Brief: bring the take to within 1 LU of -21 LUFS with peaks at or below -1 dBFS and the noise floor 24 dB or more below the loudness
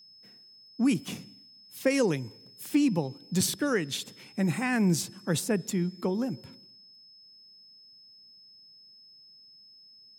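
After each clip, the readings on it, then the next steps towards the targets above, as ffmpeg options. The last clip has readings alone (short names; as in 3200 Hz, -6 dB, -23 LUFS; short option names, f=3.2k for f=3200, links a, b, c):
steady tone 5200 Hz; tone level -52 dBFS; loudness -29.0 LUFS; peak -12.0 dBFS; loudness target -21.0 LUFS
-> -af "bandreject=f=5.2k:w=30"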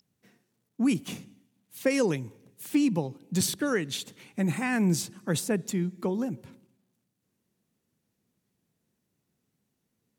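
steady tone none; loudness -29.0 LUFS; peak -12.0 dBFS; loudness target -21.0 LUFS
-> -af "volume=8dB"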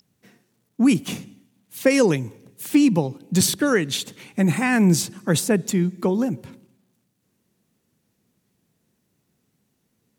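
loudness -21.0 LUFS; peak -4.0 dBFS; noise floor -72 dBFS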